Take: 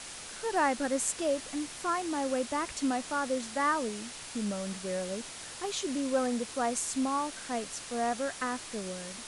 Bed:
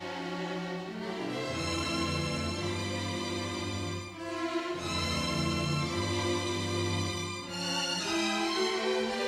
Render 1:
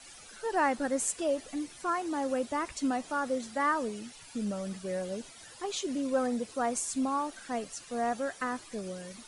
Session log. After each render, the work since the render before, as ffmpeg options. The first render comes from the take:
-af "afftdn=nr=13:nf=-44"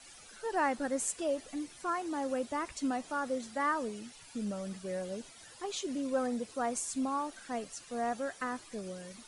-af "volume=-3dB"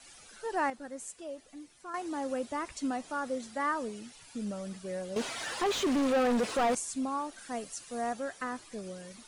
-filter_complex "[0:a]asettb=1/sr,asplit=3[a][b][c];[a]atrim=end=5.164[d];[b]atrim=start=5.16:end=6.75,asetpts=PTS-STARTPTS,afade=t=in:d=0.004:c=qsin,afade=t=out:st=1.586:d=0.004:c=qsin,asplit=2[e][f];[f]highpass=f=720:p=1,volume=31dB,asoftclip=type=tanh:threshold=-20dB[g];[e][g]amix=inputs=2:normalize=0,lowpass=f=1.9k:p=1,volume=-6dB[h];[c]atrim=start=6.746[i];[d][h]acrossfade=d=0.004:c1=hsin:c2=qsin[j];[j][i]acrossfade=d=0.004:c1=qsin:c2=hsin,asettb=1/sr,asplit=3[k][l][m];[k]atrim=end=7.384[n];[l]atrim=start=7.38:end=8.13,asetpts=PTS-STARTPTS,afade=t=in:d=0.004:c=qsin,afade=t=out:st=0.746:d=0.004:c=qsin,highshelf=f=8.4k:g=9[o];[m]atrim=start=8.126[p];[n][o]acrossfade=d=0.004:c1=hsin:c2=qsin[q];[q][p]acrossfade=d=0.004:c1=qsin:c2=hsin,asplit=3[r][s][t];[r]atrim=end=0.702[u];[s]atrim=start=0.698:end=1.942,asetpts=PTS-STARTPTS,volume=-9dB[v];[t]atrim=start=1.938[w];[u][v]acrossfade=d=0.004:c1=hsin:c2=hsin[x];[x][w]acrossfade=d=0.004:c1=hsin:c2=hsin"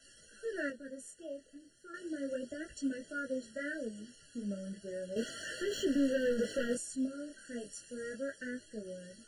-af "flanger=delay=18:depth=7.2:speed=0.33,afftfilt=real='re*eq(mod(floor(b*sr/1024/670),2),0)':imag='im*eq(mod(floor(b*sr/1024/670),2),0)':win_size=1024:overlap=0.75"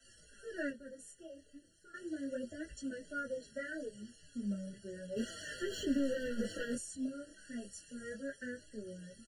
-filter_complex "[0:a]acrossover=split=140|1200[a][b][c];[a]aeval=exprs='0.0126*sin(PI/2*1.58*val(0)/0.0126)':c=same[d];[d][b][c]amix=inputs=3:normalize=0,asplit=2[e][f];[f]adelay=5.2,afreqshift=-2.5[g];[e][g]amix=inputs=2:normalize=1"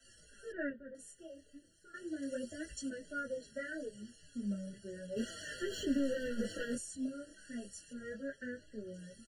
-filter_complex "[0:a]asettb=1/sr,asplit=3[a][b][c];[a]atrim=end=0.524[d];[b]atrim=start=0.52:end=0.95,asetpts=PTS-STARTPTS,afade=t=in:d=0.004:c=qsin,afade=t=out:st=0.426:d=0.004:c=qsin,lowpass=f=2.3k:w=0.5412,lowpass=f=2.3k:w=1.3066[e];[c]atrim=start=0.946[f];[d][e]acrossfade=d=0.004:c1=hsin:c2=qsin[g];[g][f]acrossfade=d=0.004:c1=qsin:c2=hsin,asettb=1/sr,asplit=3[h][i][j];[h]atrim=end=2.224[k];[i]atrim=start=2.22:end=2.9,asetpts=PTS-STARTPTS,afade=t=in:d=0.004:c=qsin,afade=t=out:st=0.676:d=0.004:c=qsin,highshelf=f=3k:g=7.5[l];[j]atrim=start=2.896[m];[k][l]acrossfade=d=0.004:c1=hsin:c2=qsin[n];[n][m]acrossfade=d=0.004:c1=qsin:c2=hsin,asettb=1/sr,asplit=3[o][p][q];[o]atrim=end=7.934[r];[p]atrim=start=7.93:end=8.94,asetpts=PTS-STARTPTS,afade=t=in:d=0.004:c=qsin,afade=t=out:st=1.006:d=0.004:c=qsin,aemphasis=mode=reproduction:type=50fm[s];[q]atrim=start=8.936[t];[r][s]acrossfade=d=0.004:c1=hsin:c2=qsin[u];[u][t]acrossfade=d=0.004:c1=qsin:c2=hsin"

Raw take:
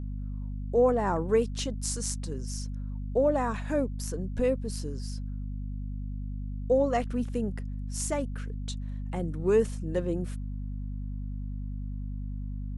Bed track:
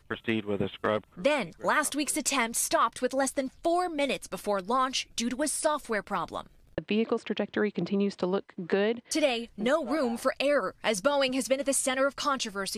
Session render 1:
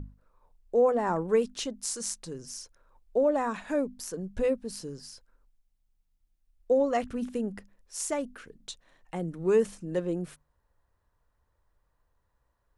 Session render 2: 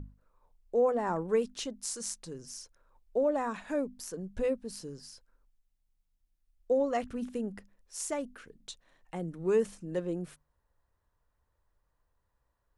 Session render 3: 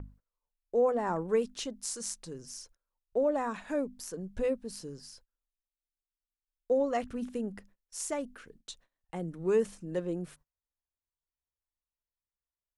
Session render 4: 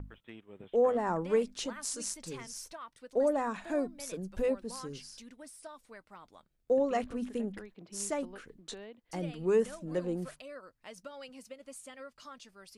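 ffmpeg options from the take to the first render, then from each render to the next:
-af "bandreject=f=50:t=h:w=6,bandreject=f=100:t=h:w=6,bandreject=f=150:t=h:w=6,bandreject=f=200:t=h:w=6,bandreject=f=250:t=h:w=6"
-af "volume=-3.5dB"
-af "agate=range=-24dB:threshold=-57dB:ratio=16:detection=peak"
-filter_complex "[1:a]volume=-21dB[a];[0:a][a]amix=inputs=2:normalize=0"

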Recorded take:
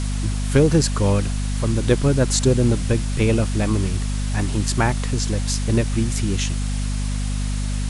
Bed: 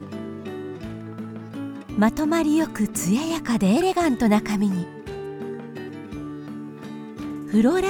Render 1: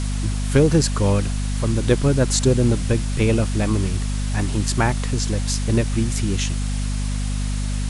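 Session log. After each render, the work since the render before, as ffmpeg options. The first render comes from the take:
-af anull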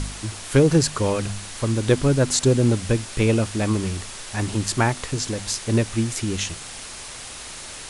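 -af "bandreject=f=50:t=h:w=4,bandreject=f=100:t=h:w=4,bandreject=f=150:t=h:w=4,bandreject=f=200:t=h:w=4,bandreject=f=250:t=h:w=4"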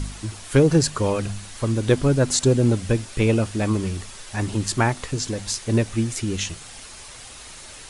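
-af "afftdn=nr=6:nf=-37"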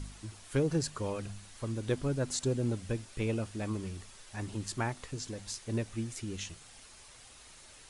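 -af "volume=-13.5dB"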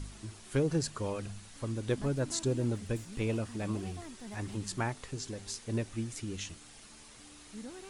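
-filter_complex "[1:a]volume=-27.5dB[a];[0:a][a]amix=inputs=2:normalize=0"

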